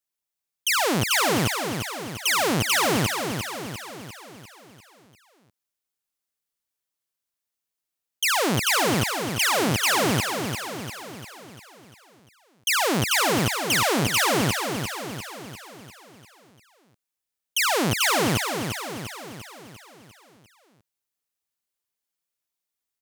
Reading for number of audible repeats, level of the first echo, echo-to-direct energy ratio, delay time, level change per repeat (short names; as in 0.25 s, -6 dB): 6, -6.5 dB, -5.0 dB, 0.348 s, -5.5 dB